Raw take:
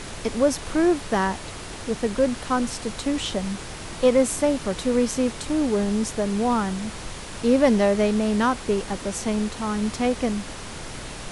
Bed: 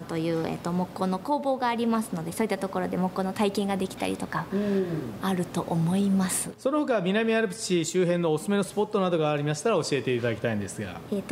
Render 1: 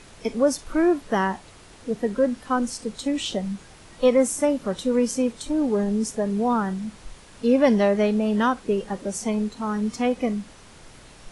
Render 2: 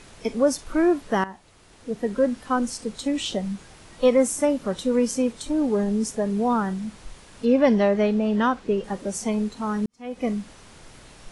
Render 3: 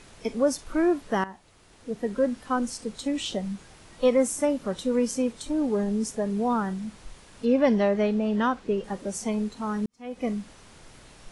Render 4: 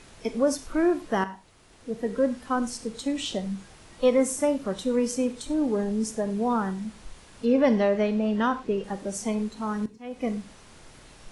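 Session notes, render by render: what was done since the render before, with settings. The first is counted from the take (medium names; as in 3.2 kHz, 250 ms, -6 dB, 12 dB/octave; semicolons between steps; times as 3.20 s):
noise print and reduce 12 dB
1.24–2.21 s: fade in, from -14.5 dB; 7.45–8.84 s: distance through air 67 m; 9.86–10.28 s: fade in quadratic
trim -3 dB
gated-style reverb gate 130 ms flat, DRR 12 dB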